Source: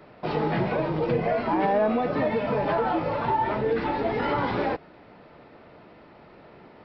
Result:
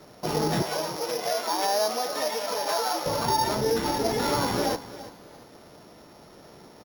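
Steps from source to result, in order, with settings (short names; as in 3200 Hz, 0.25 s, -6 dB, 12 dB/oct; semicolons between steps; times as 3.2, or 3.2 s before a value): sample sorter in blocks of 8 samples; 0.62–3.06 HPF 590 Hz 12 dB/oct; feedback echo 0.338 s, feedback 30%, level -15.5 dB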